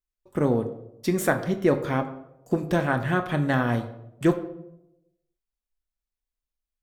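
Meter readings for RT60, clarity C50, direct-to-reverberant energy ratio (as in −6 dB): 0.85 s, 12.0 dB, 6.5 dB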